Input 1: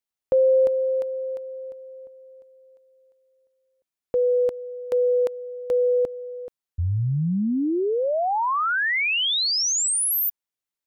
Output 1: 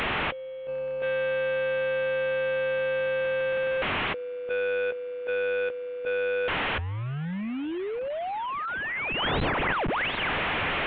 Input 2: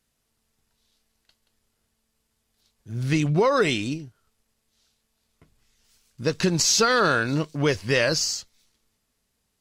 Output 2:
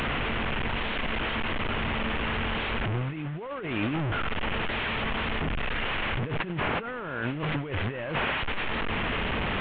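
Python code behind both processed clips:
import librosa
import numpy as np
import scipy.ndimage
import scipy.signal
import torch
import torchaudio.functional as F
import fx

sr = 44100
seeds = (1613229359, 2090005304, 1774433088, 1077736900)

y = fx.delta_mod(x, sr, bps=16000, step_db=-24.5)
y = fx.over_compress(y, sr, threshold_db=-29.0, ratio=-1.0)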